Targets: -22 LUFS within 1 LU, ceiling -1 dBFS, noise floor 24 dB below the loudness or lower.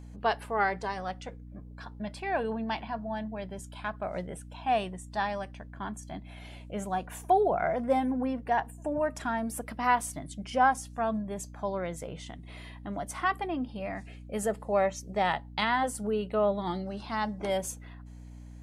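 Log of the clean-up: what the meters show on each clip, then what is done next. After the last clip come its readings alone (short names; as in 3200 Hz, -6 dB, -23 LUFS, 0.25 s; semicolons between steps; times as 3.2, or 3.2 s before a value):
hum 60 Hz; harmonics up to 300 Hz; hum level -43 dBFS; loudness -31.5 LUFS; peak -11.5 dBFS; loudness target -22.0 LUFS
-> de-hum 60 Hz, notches 5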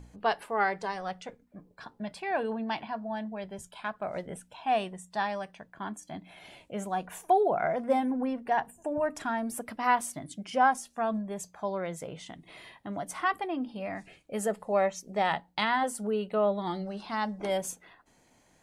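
hum none; loudness -31.5 LUFS; peak -11.5 dBFS; loudness target -22.0 LUFS
-> gain +9.5 dB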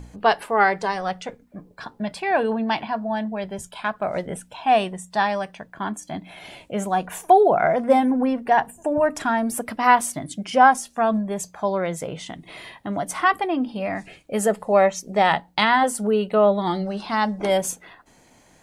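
loudness -22.0 LUFS; peak -2.0 dBFS; noise floor -55 dBFS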